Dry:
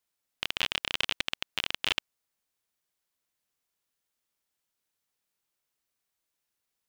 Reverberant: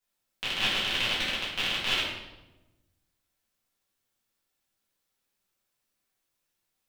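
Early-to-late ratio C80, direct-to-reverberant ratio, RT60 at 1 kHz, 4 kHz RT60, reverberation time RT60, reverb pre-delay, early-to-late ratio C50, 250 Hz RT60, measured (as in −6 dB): 4.5 dB, −10.0 dB, 0.95 s, 0.80 s, 1.1 s, 4 ms, 1.0 dB, 1.4 s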